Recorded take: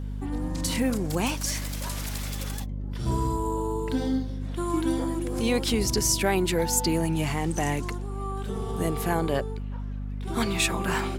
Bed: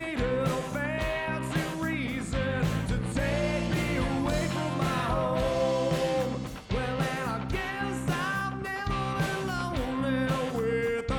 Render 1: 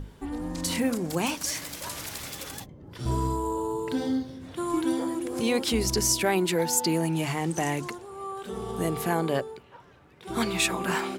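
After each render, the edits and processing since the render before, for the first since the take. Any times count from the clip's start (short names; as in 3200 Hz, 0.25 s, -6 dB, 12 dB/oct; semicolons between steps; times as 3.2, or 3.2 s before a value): notches 50/100/150/200/250 Hz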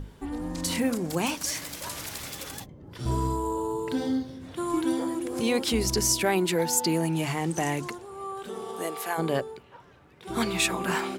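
8.48–9.17 HPF 230 Hz -> 760 Hz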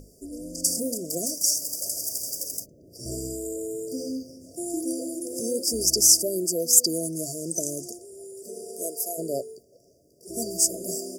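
FFT band-reject 710–4600 Hz; tone controls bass -11 dB, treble +10 dB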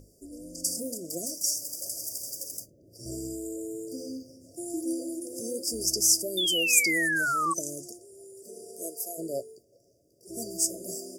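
resonator 110 Hz, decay 0.15 s, harmonics odd, mix 60%; 6.37–7.54 painted sound fall 1100–3600 Hz -27 dBFS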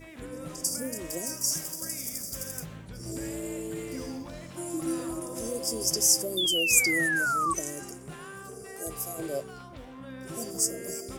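add bed -14.5 dB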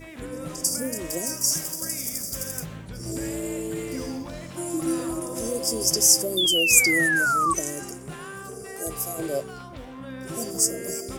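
gain +5 dB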